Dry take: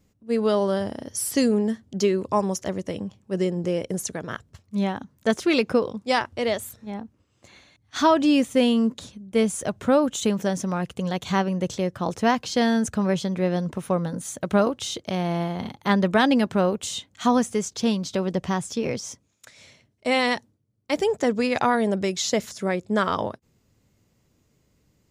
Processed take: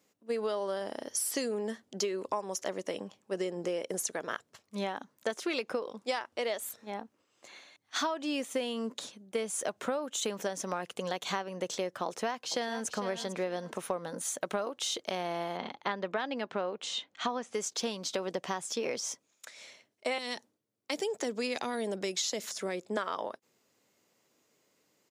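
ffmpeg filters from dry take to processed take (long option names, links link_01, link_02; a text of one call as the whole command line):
ffmpeg -i in.wav -filter_complex "[0:a]asplit=2[link_01][link_02];[link_02]afade=type=in:start_time=12.06:duration=0.01,afade=type=out:start_time=12.87:duration=0.01,aecho=0:1:450|900|1350:0.188365|0.0470912|0.0117728[link_03];[link_01][link_03]amix=inputs=2:normalize=0,asettb=1/sr,asplit=3[link_04][link_05][link_06];[link_04]atrim=end=15.574[link_07];[link_05]atrim=start=15.57:end=17.54,asetpts=PTS-STARTPTS,afade=type=in:duration=0.004:curve=qsin,afade=type=out:start_time=1.966:duration=0.004:curve=qsin,lowpass=4100[link_08];[link_06]atrim=start=17.536[link_09];[link_07][link_08]acrossfade=duration=0.004:curve1=hsin:curve2=qsin[link_10];[link_10][link_09]acrossfade=duration=0.004:curve1=qsin:curve2=hsin,asettb=1/sr,asplit=3[link_11][link_12][link_13];[link_11]atrim=end=20.184[link_14];[link_12]atrim=start=20.18:end=22.97,asetpts=PTS-STARTPTS,afade=type=in:duration=0.004:curve=qsin,afade=type=out:start_time=2.786:duration=0.004:curve=qsin,acrossover=split=390|3000[link_15][link_16][link_17];[link_16]acompressor=threshold=-34dB:ratio=6:attack=3.2:release=140:knee=2.83:detection=peak[link_18];[link_15][link_18][link_17]amix=inputs=3:normalize=0[link_19];[link_13]atrim=start=22.966[link_20];[link_14][link_19]acrossfade=duration=0.004:curve1=hsin:curve2=qsin[link_21];[link_21][link_20]acrossfade=duration=0.004:curve1=qsin:curve2=hsin,highpass=420,acompressor=threshold=-29dB:ratio=12" out.wav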